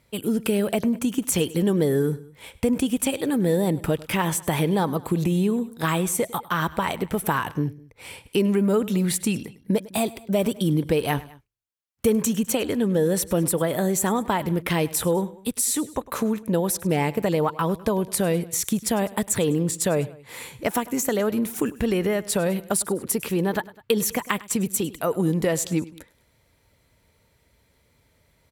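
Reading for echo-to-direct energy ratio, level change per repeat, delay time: -18.0 dB, -4.5 dB, 102 ms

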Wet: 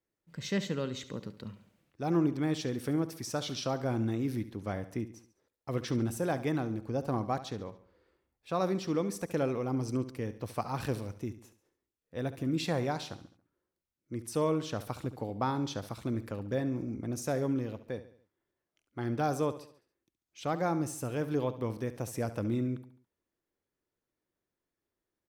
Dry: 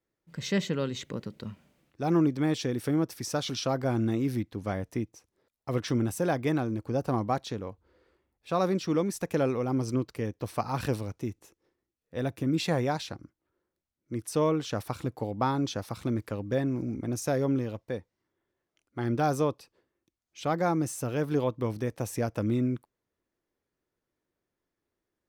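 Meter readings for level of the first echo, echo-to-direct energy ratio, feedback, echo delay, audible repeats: -14.0 dB, -13.0 dB, 46%, 70 ms, 4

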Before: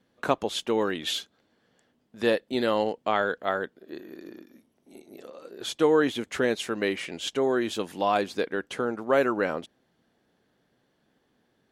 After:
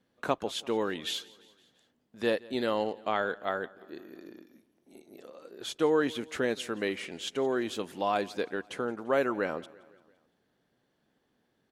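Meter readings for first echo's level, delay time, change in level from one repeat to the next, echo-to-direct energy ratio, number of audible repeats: -22.5 dB, 171 ms, -4.5 dB, -21.0 dB, 3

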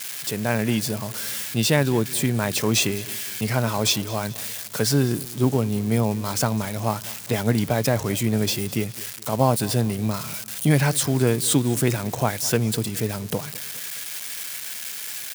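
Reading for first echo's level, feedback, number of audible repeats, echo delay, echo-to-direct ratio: -20.0 dB, 48%, 3, 208 ms, -19.0 dB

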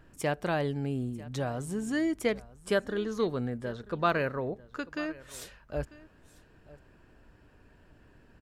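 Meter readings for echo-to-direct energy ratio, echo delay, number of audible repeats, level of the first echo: -20.0 dB, 944 ms, 1, -20.0 dB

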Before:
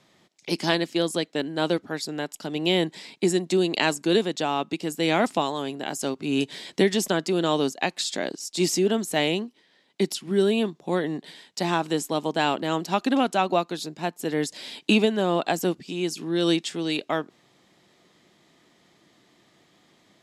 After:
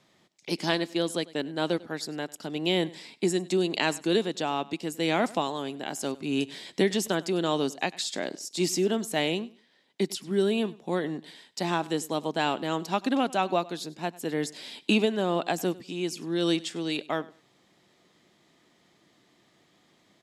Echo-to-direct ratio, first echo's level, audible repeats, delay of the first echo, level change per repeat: -21.0 dB, -21.0 dB, 2, 98 ms, -13.0 dB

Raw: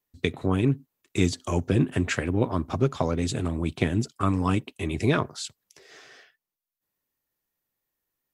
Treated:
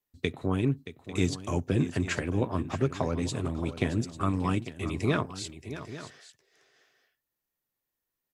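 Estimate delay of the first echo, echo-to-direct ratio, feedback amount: 625 ms, -11.0 dB, no regular repeats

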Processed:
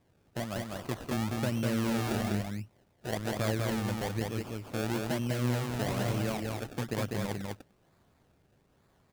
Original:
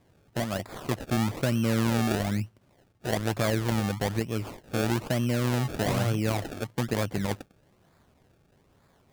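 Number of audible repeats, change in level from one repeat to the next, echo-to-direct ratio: 1, no regular repeats, -3.0 dB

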